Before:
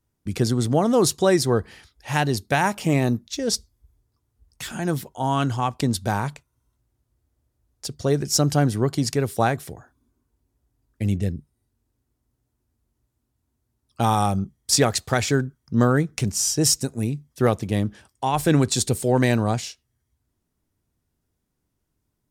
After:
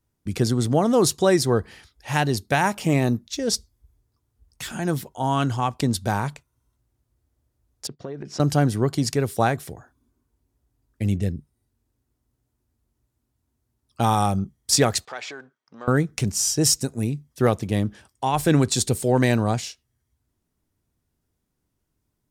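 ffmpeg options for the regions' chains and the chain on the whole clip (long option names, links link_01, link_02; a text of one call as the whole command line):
ffmpeg -i in.wav -filter_complex "[0:a]asettb=1/sr,asplit=3[link_01][link_02][link_03];[link_01]atrim=end=7.874[link_04];[link_02]atrim=start=7.87:end=8.4,asetpts=PTS-STARTPTS,afade=type=in:duration=0.004:curve=qsin,afade=type=out:start_time=0.526:duration=0.004:curve=qsin,agate=range=-12dB:threshold=-42dB:ratio=16:release=100:detection=peak,highpass=170,lowpass=2400,acompressor=threshold=-29dB:ratio=8:attack=3.2:release=140:knee=1:detection=peak[link_05];[link_03]atrim=start=8.396[link_06];[link_04][link_05]acrossfade=duration=0.004:curve1=hsin:curve2=qsin[link_07];[link_07][link_06]acrossfade=duration=0.004:curve1=qsin:curve2=hsin,asettb=1/sr,asplit=3[link_08][link_09][link_10];[link_08]atrim=end=15.054[link_11];[link_09]atrim=start=15.05:end=15.88,asetpts=PTS-STARTPTS,afade=type=in:duration=0.004:curve=qsin,afade=type=out:start_time=0.826:duration=0.004:curve=qsin,aeval=exprs='if(lt(val(0),0),0.708*val(0),val(0))':channel_layout=same,acompressor=threshold=-25dB:ratio=6:attack=3.2:release=140:knee=1:detection=peak,highpass=590,lowpass=4000[link_12];[link_10]atrim=start=15.876[link_13];[link_11][link_12]acrossfade=duration=0.004:curve1=hsin:curve2=qsin[link_14];[link_14][link_13]acrossfade=duration=0.004:curve1=qsin:curve2=hsin" out.wav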